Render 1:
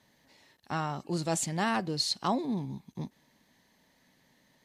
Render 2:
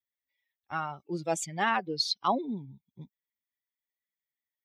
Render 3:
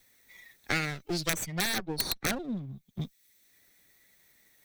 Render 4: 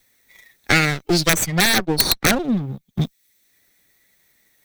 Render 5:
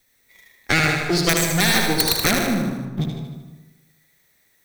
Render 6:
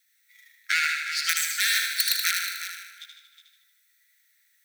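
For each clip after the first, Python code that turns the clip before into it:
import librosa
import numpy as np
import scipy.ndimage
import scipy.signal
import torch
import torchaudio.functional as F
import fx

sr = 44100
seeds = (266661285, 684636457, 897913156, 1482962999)

y1 = fx.bin_expand(x, sr, power=2.0)
y1 = fx.highpass(y1, sr, hz=570.0, slope=6)
y1 = fx.peak_eq(y1, sr, hz=11000.0, db=-12.0, octaves=1.7)
y1 = F.gain(torch.from_numpy(y1), 8.0).numpy()
y2 = fx.lower_of_two(y1, sr, delay_ms=0.51)
y2 = (np.mod(10.0 ** (20.0 / 20.0) * y2 + 1.0, 2.0) - 1.0) / 10.0 ** (20.0 / 20.0)
y2 = fx.band_squash(y2, sr, depth_pct=100)
y3 = fx.leveller(y2, sr, passes=2)
y3 = F.gain(torch.from_numpy(y3), 6.5).numpy()
y4 = fx.echo_feedback(y3, sr, ms=77, feedback_pct=55, wet_db=-5.0)
y4 = fx.rev_plate(y4, sr, seeds[0], rt60_s=1.1, hf_ratio=0.4, predelay_ms=90, drr_db=6.0)
y4 = F.gain(torch.from_numpy(y4), -3.0).numpy()
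y5 = fx.brickwall_highpass(y4, sr, low_hz=1300.0)
y5 = y5 + 10.0 ** (-11.0 / 20.0) * np.pad(y5, (int(364 * sr / 1000.0), 0))[:len(y5)]
y5 = F.gain(torch.from_numpy(y5), -4.0).numpy()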